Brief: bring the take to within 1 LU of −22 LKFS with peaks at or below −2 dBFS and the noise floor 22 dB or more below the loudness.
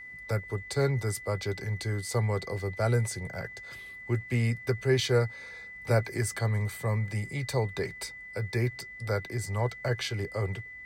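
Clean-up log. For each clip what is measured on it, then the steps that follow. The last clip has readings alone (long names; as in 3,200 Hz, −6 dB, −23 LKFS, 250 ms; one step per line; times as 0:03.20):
interfering tone 2,000 Hz; level of the tone −42 dBFS; integrated loudness −31.0 LKFS; sample peak −12.0 dBFS; target loudness −22.0 LKFS
→ notch filter 2,000 Hz, Q 30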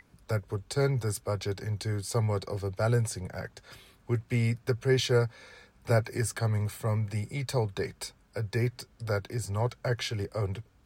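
interfering tone none found; integrated loudness −31.0 LKFS; sample peak −12.5 dBFS; target loudness −22.0 LKFS
→ level +9 dB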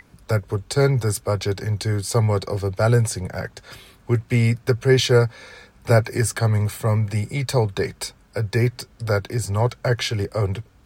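integrated loudness −22.0 LKFS; sample peak −3.5 dBFS; background noise floor −53 dBFS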